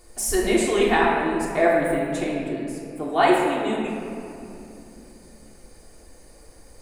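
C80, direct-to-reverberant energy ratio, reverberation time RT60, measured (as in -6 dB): 2.0 dB, -5.5 dB, 2.8 s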